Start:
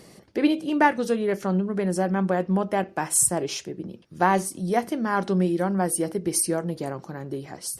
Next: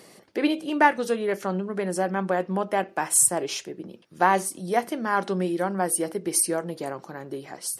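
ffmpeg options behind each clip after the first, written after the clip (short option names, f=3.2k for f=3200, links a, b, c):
-af "highpass=f=430:p=1,equalizer=f=5.5k:t=o:w=0.77:g=-2.5,volume=2dB"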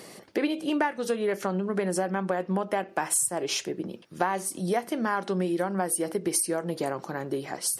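-af "acompressor=threshold=-28dB:ratio=6,volume=4.5dB"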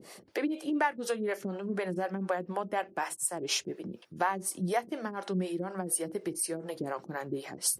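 -filter_complex "[0:a]acrossover=split=410[a][b];[a]aeval=exprs='val(0)*(1-1/2+1/2*cos(2*PI*4.1*n/s))':c=same[c];[b]aeval=exprs='val(0)*(1-1/2-1/2*cos(2*PI*4.1*n/s))':c=same[d];[c][d]amix=inputs=2:normalize=0"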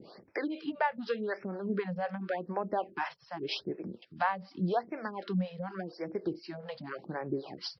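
-filter_complex "[0:a]acrossover=split=810[a][b];[a]aeval=exprs='val(0)*(1-0.5/2+0.5/2*cos(2*PI*1.1*n/s))':c=same[c];[b]aeval=exprs='val(0)*(1-0.5/2-0.5/2*cos(2*PI*1.1*n/s))':c=same[d];[c][d]amix=inputs=2:normalize=0,aresample=11025,aresample=44100,afftfilt=real='re*(1-between(b*sr/1024,280*pow(3800/280,0.5+0.5*sin(2*PI*0.86*pts/sr))/1.41,280*pow(3800/280,0.5+0.5*sin(2*PI*0.86*pts/sr))*1.41))':imag='im*(1-between(b*sr/1024,280*pow(3800/280,0.5+0.5*sin(2*PI*0.86*pts/sr))/1.41,280*pow(3800/280,0.5+0.5*sin(2*PI*0.86*pts/sr))*1.41))':win_size=1024:overlap=0.75,volume=2dB"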